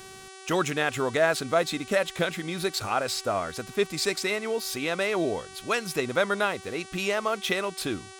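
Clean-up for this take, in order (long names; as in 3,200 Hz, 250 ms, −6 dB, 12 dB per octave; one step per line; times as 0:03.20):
hum removal 381.3 Hz, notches 27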